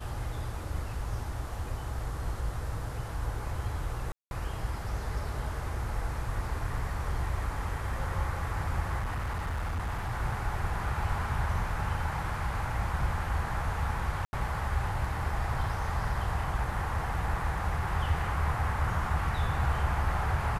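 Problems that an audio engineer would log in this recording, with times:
0:04.12–0:04.31: drop-out 191 ms
0:08.99–0:10.12: clipping −29 dBFS
0:14.25–0:14.33: drop-out 80 ms

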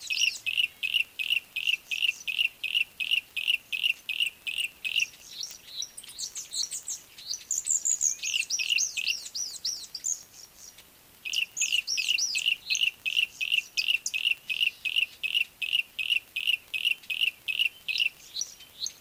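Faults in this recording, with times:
surface crackle 20 per second −35 dBFS
0:04.22–0:04.87: clipping −25 dBFS
0:05.51: click

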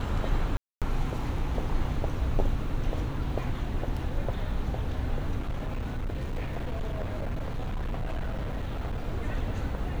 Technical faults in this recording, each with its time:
0:00.57–0:00.82: drop-out 247 ms
0:05.39–0:09.04: clipping −27.5 dBFS

